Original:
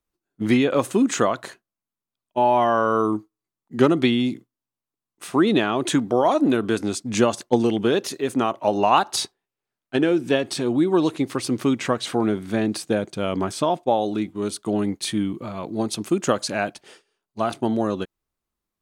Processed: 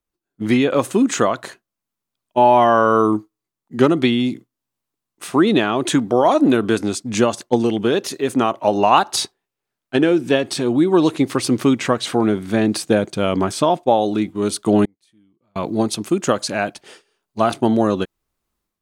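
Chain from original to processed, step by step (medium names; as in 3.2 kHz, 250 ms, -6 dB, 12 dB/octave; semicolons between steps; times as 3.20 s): level rider gain up to 11.5 dB; 14.85–15.56 s: inverted gate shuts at -21 dBFS, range -41 dB; trim -1 dB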